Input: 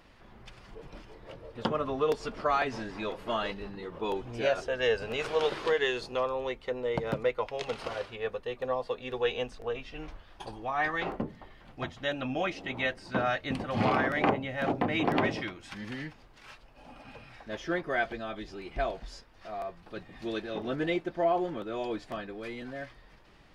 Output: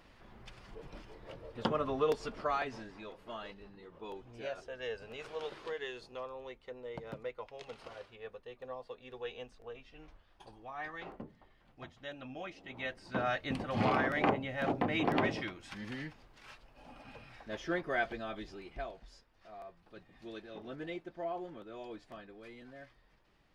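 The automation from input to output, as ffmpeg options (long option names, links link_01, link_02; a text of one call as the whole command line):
ffmpeg -i in.wav -af "volume=7dB,afade=type=out:start_time=2:duration=1.05:silence=0.298538,afade=type=in:start_time=12.64:duration=0.74:silence=0.334965,afade=type=out:start_time=18.39:duration=0.49:silence=0.375837" out.wav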